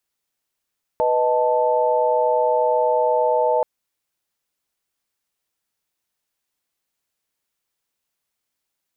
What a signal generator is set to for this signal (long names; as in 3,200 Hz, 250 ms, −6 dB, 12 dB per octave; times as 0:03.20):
held notes B4/D#5/A5 sine, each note −20 dBFS 2.63 s